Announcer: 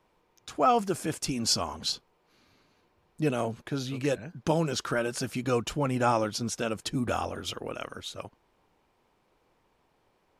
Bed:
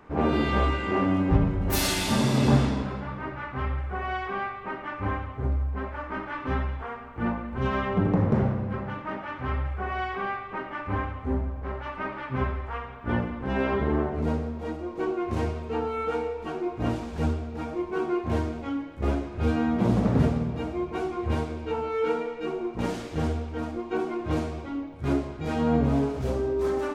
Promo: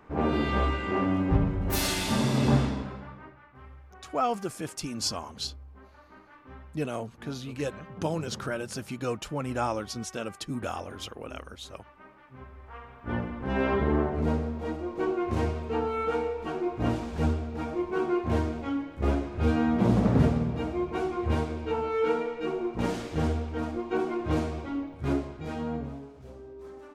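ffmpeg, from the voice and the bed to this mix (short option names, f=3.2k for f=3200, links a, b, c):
-filter_complex "[0:a]adelay=3550,volume=-4dB[a];[1:a]volume=17dB,afade=t=out:st=2.57:d=0.83:silence=0.141254,afade=t=in:st=12.5:d=1.2:silence=0.105925,afade=t=out:st=24.82:d=1.17:silence=0.11885[b];[a][b]amix=inputs=2:normalize=0"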